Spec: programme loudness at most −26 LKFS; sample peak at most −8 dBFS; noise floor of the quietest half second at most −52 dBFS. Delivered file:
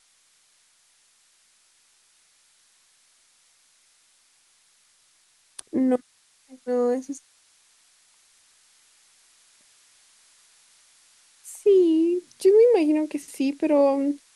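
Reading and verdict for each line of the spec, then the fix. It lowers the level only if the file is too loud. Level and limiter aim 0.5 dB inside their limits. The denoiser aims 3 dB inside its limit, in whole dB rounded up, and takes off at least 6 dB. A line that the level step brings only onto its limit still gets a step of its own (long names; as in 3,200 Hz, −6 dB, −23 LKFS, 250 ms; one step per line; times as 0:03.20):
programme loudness −22.0 LKFS: out of spec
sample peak −9.0 dBFS: in spec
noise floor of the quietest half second −62 dBFS: in spec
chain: level −4.5 dB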